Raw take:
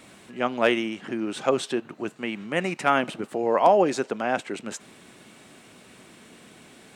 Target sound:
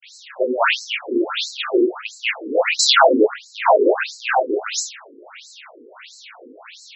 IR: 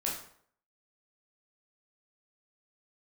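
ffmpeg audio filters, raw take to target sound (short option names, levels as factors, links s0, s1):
-filter_complex "[0:a]asplit=2[s0][s1];[s1]highpass=f=720:p=1,volume=5.62,asoftclip=type=tanh:threshold=0.473[s2];[s0][s2]amix=inputs=2:normalize=0,lowpass=f=7800:p=1,volume=0.501,agate=range=0.0224:threshold=0.0126:ratio=3:detection=peak,asplit=2[s3][s4];[s4]acompressor=threshold=0.0562:ratio=20,volume=0.708[s5];[s3][s5]amix=inputs=2:normalize=0[s6];[1:a]atrim=start_sample=2205[s7];[s6][s7]afir=irnorm=-1:irlink=0,acrusher=bits=6:mix=0:aa=0.000001,aeval=exprs='1.26*(cos(1*acos(clip(val(0)/1.26,-1,1)))-cos(1*PI/2))+0.224*(cos(4*acos(clip(val(0)/1.26,-1,1)))-cos(4*PI/2))+0.447*(cos(5*acos(clip(val(0)/1.26,-1,1)))-cos(5*PI/2))+0.00891*(cos(8*acos(clip(val(0)/1.26,-1,1)))-cos(8*PI/2))':c=same,asplit=3[s8][s9][s10];[s8]afade=t=out:st=2.78:d=0.02[s11];[s9]equalizer=f=125:t=o:w=1:g=5,equalizer=f=250:t=o:w=1:g=10,equalizer=f=500:t=o:w=1:g=5,equalizer=f=1000:t=o:w=1:g=6,equalizer=f=2000:t=o:w=1:g=-6,equalizer=f=4000:t=o:w=1:g=12,equalizer=f=8000:t=o:w=1:g=6,afade=t=in:st=2.78:d=0.02,afade=t=out:st=3.26:d=0.02[s12];[s10]afade=t=in:st=3.26:d=0.02[s13];[s11][s12][s13]amix=inputs=3:normalize=0,afftfilt=real='re*between(b*sr/1024,340*pow(5700/340,0.5+0.5*sin(2*PI*1.5*pts/sr))/1.41,340*pow(5700/340,0.5+0.5*sin(2*PI*1.5*pts/sr))*1.41)':imag='im*between(b*sr/1024,340*pow(5700/340,0.5+0.5*sin(2*PI*1.5*pts/sr))/1.41,340*pow(5700/340,0.5+0.5*sin(2*PI*1.5*pts/sr))*1.41)':win_size=1024:overlap=0.75,volume=0.562"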